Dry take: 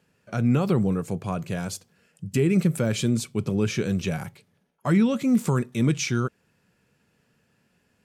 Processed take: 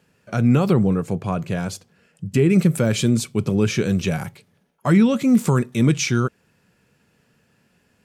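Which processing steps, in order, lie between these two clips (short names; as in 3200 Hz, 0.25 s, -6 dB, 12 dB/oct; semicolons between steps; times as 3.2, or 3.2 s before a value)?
0.73–2.5 high shelf 5300 Hz -7.5 dB; gain +5 dB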